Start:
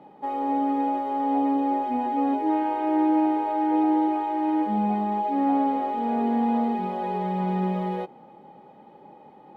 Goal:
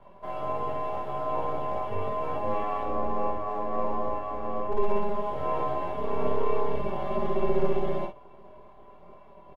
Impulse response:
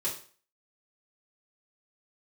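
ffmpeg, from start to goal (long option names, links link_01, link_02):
-filter_complex "[0:a]asettb=1/sr,asplit=3[link_01][link_02][link_03];[link_01]atrim=end=2.834[link_04];[link_02]atrim=start=2.83:end=4.76,asetpts=PTS-STARTPTS,afade=type=in:duration=0.004:curve=qsin,afade=type=out:start_time=1.926:duration=0.004:curve=qsin,lowpass=frequency=1200:poles=1[link_05];[link_03]atrim=start=4.756[link_06];[link_04][link_05]acrossfade=duration=0.004:curve1=hsin:curve2=qsin[link_07];[link_07][link_06]acrossfade=duration=0.004:curve1=qsin:curve2=hsin,aecho=1:1:5.2:0.98,aeval=exprs='val(0)*sin(2*PI*200*n/s)':channel_layout=same,acrossover=split=420|460[link_08][link_09][link_10];[link_08]aeval=exprs='abs(val(0))':channel_layout=same[link_11];[link_10]flanger=delay=15.5:depth=2.1:speed=1.2[link_12];[link_11][link_09][link_12]amix=inputs=3:normalize=0,aecho=1:1:23|52:0.398|0.501"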